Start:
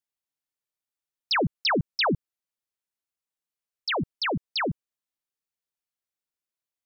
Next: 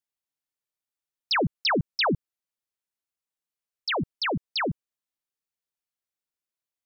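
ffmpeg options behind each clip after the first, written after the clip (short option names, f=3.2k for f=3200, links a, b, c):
-af anull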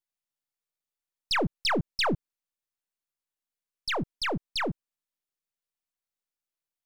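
-af "aeval=exprs='if(lt(val(0),0),0.447*val(0),val(0))':c=same"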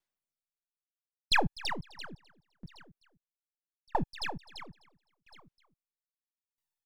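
-af "aphaser=in_gain=1:out_gain=1:delay=1.2:decay=0.59:speed=0.36:type=sinusoidal,aecho=1:1:256|512|768|1024:0.211|0.0972|0.0447|0.0206,aeval=exprs='val(0)*pow(10,-37*if(lt(mod(0.76*n/s,1),2*abs(0.76)/1000),1-mod(0.76*n/s,1)/(2*abs(0.76)/1000),(mod(0.76*n/s,1)-2*abs(0.76)/1000)/(1-2*abs(0.76)/1000))/20)':c=same"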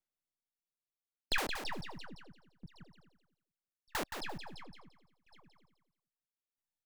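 -filter_complex "[0:a]acrossover=split=640[a][b];[a]aeval=exprs='(mod(22.4*val(0)+1,2)-1)/22.4':c=same[c];[b]flanger=delay=1.4:depth=9.9:regen=-56:speed=0.34:shape=sinusoidal[d];[c][d]amix=inputs=2:normalize=0,aecho=1:1:172|344|516:0.447|0.0983|0.0216,volume=-3.5dB"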